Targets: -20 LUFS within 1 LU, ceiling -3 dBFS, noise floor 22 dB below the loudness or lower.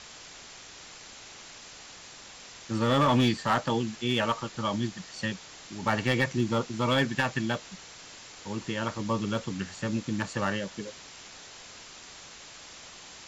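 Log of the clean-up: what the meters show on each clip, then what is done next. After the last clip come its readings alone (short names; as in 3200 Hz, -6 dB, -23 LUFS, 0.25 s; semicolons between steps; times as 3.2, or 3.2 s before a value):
clipped 0.3%; flat tops at -17.0 dBFS; noise floor -48 dBFS; noise floor target -51 dBFS; loudness -29.0 LUFS; peak -17.0 dBFS; loudness target -20.0 LUFS
-> clip repair -17 dBFS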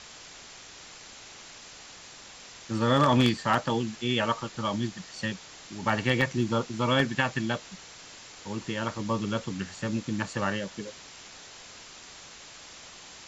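clipped 0.0%; noise floor -48 dBFS; noise floor target -51 dBFS
-> denoiser 6 dB, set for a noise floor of -48 dBFS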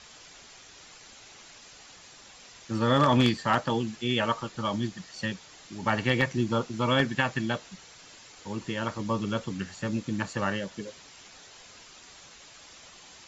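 noise floor -51 dBFS; loudness -28.5 LUFS; peak -8.0 dBFS; loudness target -20.0 LUFS
-> gain +8.5 dB; limiter -3 dBFS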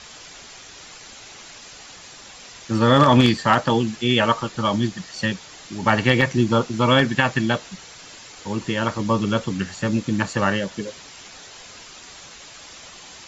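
loudness -20.5 LUFS; peak -3.0 dBFS; noise floor -43 dBFS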